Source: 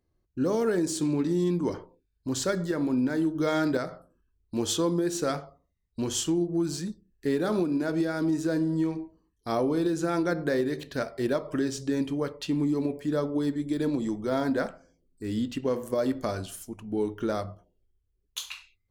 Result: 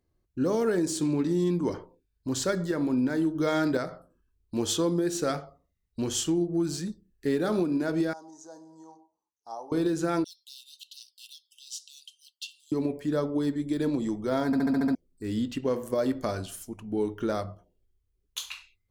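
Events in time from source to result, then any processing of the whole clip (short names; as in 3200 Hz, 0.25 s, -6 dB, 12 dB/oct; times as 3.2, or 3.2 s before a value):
4.83–7.6 notch 1000 Hz, Q 16
8.13–9.72 double band-pass 2300 Hz, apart 2.9 oct
10.24–12.72 Chebyshev high-pass 2700 Hz, order 10
14.46 stutter in place 0.07 s, 7 plays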